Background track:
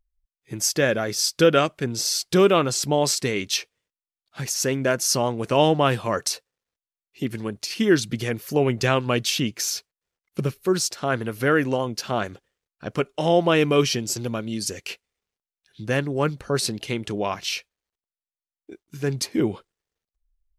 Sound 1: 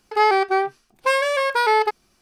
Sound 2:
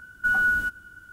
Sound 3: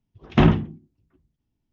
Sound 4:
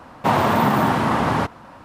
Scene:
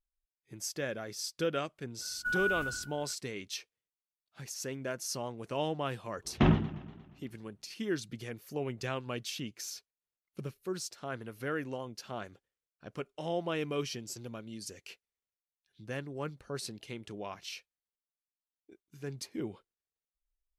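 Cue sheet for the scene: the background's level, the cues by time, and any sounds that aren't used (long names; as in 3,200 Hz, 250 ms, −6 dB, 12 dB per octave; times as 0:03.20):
background track −15.5 dB
0:02.01: mix in 2 −10.5 dB + level that may fall only so fast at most 88 dB per second
0:06.03: mix in 3 −9 dB + feedback echo with a swinging delay time 118 ms, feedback 59%, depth 162 cents, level −16.5 dB
not used: 1, 4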